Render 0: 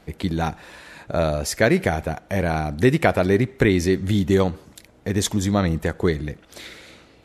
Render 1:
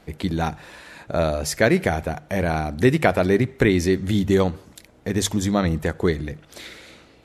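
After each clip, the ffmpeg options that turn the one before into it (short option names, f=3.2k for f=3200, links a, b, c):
-af "bandreject=f=50:t=h:w=6,bandreject=f=100:t=h:w=6,bandreject=f=150:t=h:w=6"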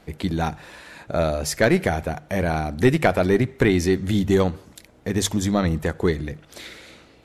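-af "aeval=exprs='0.841*(cos(1*acos(clip(val(0)/0.841,-1,1)))-cos(1*PI/2))+0.075*(cos(4*acos(clip(val(0)/0.841,-1,1)))-cos(4*PI/2))+0.015*(cos(6*acos(clip(val(0)/0.841,-1,1)))-cos(6*PI/2))':c=same"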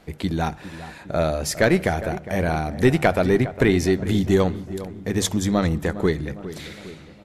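-filter_complex "[0:a]asplit=2[a][b];[b]adelay=407,lowpass=f=1.6k:p=1,volume=-13.5dB,asplit=2[c][d];[d]adelay=407,lowpass=f=1.6k:p=1,volume=0.54,asplit=2[e][f];[f]adelay=407,lowpass=f=1.6k:p=1,volume=0.54,asplit=2[g][h];[h]adelay=407,lowpass=f=1.6k:p=1,volume=0.54,asplit=2[i][j];[j]adelay=407,lowpass=f=1.6k:p=1,volume=0.54[k];[a][c][e][g][i][k]amix=inputs=6:normalize=0"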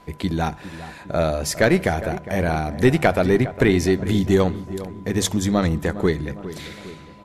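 -af "aeval=exprs='val(0)+0.00316*sin(2*PI*1000*n/s)':c=same,volume=1dB"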